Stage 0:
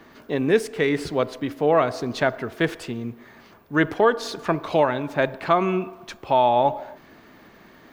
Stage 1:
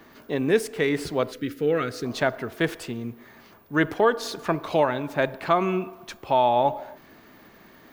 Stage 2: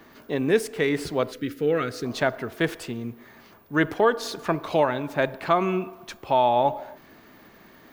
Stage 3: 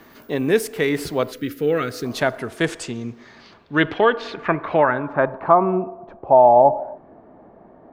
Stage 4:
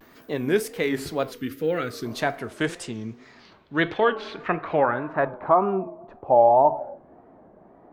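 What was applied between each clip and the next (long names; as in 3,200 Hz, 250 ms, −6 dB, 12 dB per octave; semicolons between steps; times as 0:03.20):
gain on a spectral selection 0:01.32–0:02.05, 530–1,200 Hz −16 dB; high-shelf EQ 10,000 Hz +9.5 dB; level −2 dB
no processing that can be heard
low-pass filter sweep 14,000 Hz → 710 Hz, 0:02.01–0:05.91; level +3 dB
flanger 0.35 Hz, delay 8.4 ms, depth 3.4 ms, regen −79%; tape wow and flutter 120 cents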